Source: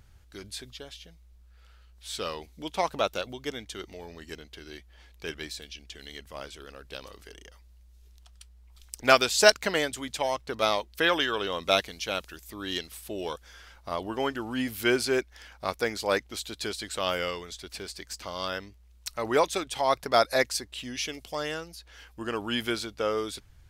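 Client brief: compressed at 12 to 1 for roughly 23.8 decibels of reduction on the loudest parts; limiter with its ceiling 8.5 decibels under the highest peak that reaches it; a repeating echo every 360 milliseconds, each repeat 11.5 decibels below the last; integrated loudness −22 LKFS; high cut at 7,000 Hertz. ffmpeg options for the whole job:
ffmpeg -i in.wav -af "lowpass=7000,acompressor=threshold=-37dB:ratio=12,alimiter=level_in=6dB:limit=-24dB:level=0:latency=1,volume=-6dB,aecho=1:1:360|720|1080:0.266|0.0718|0.0194,volume=21.5dB" out.wav

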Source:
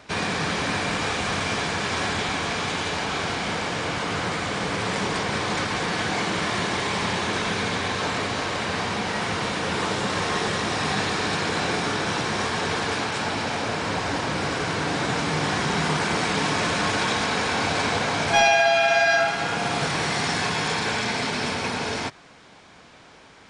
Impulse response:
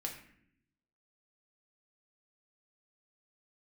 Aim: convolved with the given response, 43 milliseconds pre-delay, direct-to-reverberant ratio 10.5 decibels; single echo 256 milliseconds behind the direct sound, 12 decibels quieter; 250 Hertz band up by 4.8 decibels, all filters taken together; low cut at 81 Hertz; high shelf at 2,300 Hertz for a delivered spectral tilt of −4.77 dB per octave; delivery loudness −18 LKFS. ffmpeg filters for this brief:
-filter_complex "[0:a]highpass=81,equalizer=frequency=250:width_type=o:gain=6.5,highshelf=frequency=2300:gain=-5,aecho=1:1:256:0.251,asplit=2[link_01][link_02];[1:a]atrim=start_sample=2205,adelay=43[link_03];[link_02][link_03]afir=irnorm=-1:irlink=0,volume=-10dB[link_04];[link_01][link_04]amix=inputs=2:normalize=0,volume=5.5dB"

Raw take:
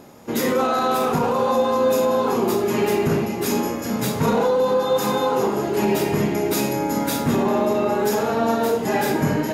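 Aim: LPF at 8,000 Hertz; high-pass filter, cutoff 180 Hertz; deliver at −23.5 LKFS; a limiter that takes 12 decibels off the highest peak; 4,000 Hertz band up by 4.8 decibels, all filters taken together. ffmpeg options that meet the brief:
ffmpeg -i in.wav -af "highpass=180,lowpass=8000,equalizer=frequency=4000:width_type=o:gain=6,volume=4.5dB,alimiter=limit=-15.5dB:level=0:latency=1" out.wav

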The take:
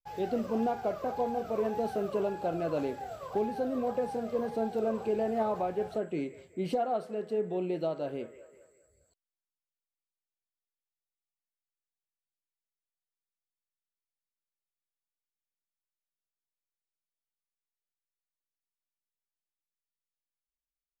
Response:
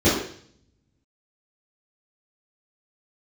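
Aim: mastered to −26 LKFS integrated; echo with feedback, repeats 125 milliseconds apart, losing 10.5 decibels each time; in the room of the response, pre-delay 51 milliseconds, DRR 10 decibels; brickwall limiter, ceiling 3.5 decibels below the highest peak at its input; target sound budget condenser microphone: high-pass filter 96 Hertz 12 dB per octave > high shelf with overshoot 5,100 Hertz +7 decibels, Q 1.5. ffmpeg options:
-filter_complex "[0:a]alimiter=limit=-23.5dB:level=0:latency=1,aecho=1:1:125|250|375:0.299|0.0896|0.0269,asplit=2[link_01][link_02];[1:a]atrim=start_sample=2205,adelay=51[link_03];[link_02][link_03]afir=irnorm=-1:irlink=0,volume=-30.5dB[link_04];[link_01][link_04]amix=inputs=2:normalize=0,highpass=96,highshelf=frequency=5100:width_type=q:width=1.5:gain=7,volume=6dB"

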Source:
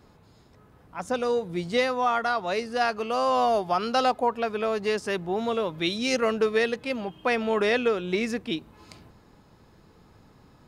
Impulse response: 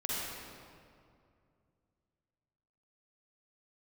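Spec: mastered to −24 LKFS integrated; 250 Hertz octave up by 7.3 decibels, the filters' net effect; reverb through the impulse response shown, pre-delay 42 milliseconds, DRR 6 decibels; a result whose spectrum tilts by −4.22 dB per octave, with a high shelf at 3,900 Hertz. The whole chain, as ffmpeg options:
-filter_complex "[0:a]equalizer=frequency=250:width_type=o:gain=8.5,highshelf=frequency=3900:gain=-5,asplit=2[link_01][link_02];[1:a]atrim=start_sample=2205,adelay=42[link_03];[link_02][link_03]afir=irnorm=-1:irlink=0,volume=-11.5dB[link_04];[link_01][link_04]amix=inputs=2:normalize=0,volume=-1.5dB"

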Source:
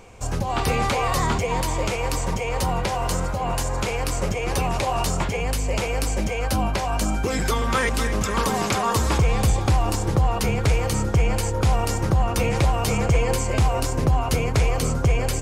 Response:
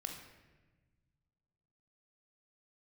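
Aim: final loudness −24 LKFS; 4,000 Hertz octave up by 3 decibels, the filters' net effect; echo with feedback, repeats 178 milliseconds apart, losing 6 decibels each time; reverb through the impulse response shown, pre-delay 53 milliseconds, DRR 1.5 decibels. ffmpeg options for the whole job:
-filter_complex "[0:a]equalizer=frequency=4000:width_type=o:gain=4,aecho=1:1:178|356|534|712|890|1068:0.501|0.251|0.125|0.0626|0.0313|0.0157,asplit=2[link_01][link_02];[1:a]atrim=start_sample=2205,adelay=53[link_03];[link_02][link_03]afir=irnorm=-1:irlink=0,volume=0dB[link_04];[link_01][link_04]amix=inputs=2:normalize=0,volume=-6dB"

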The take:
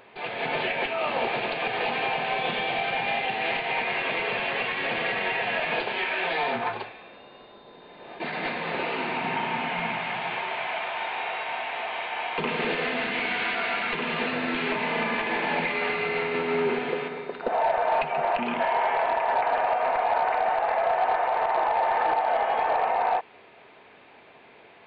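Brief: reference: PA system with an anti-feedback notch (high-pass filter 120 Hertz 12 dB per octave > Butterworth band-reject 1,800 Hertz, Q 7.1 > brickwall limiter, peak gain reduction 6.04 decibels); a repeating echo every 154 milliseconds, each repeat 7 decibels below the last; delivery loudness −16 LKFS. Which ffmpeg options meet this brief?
ffmpeg -i in.wav -af "highpass=120,asuperstop=centerf=1800:order=8:qfactor=7.1,aecho=1:1:154|308|462|616|770:0.447|0.201|0.0905|0.0407|0.0183,volume=11.5dB,alimiter=limit=-7dB:level=0:latency=1" out.wav

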